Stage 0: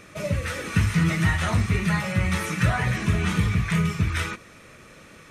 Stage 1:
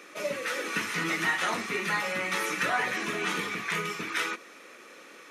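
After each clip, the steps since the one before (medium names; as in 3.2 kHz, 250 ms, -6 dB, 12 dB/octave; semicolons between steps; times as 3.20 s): high-pass 290 Hz 24 dB/octave; peaking EQ 8.4 kHz -6.5 dB 0.21 oct; band-stop 630 Hz, Q 13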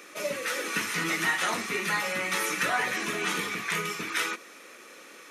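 treble shelf 6.1 kHz +8 dB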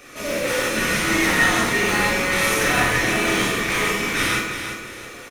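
in parallel at -7 dB: decimation with a swept rate 38×, swing 100% 1.5 Hz; on the sum: feedback delay 343 ms, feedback 34%, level -8.5 dB; gated-style reverb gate 210 ms flat, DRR -7 dB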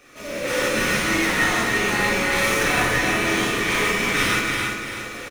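median filter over 3 samples; on a send: delay 283 ms -6.5 dB; on the sum: level rider gain up to 12 dB; trim -7 dB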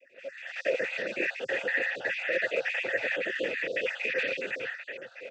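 random holes in the spectrogram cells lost 46%; noise-vocoded speech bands 16; vowel filter e; trim +4.5 dB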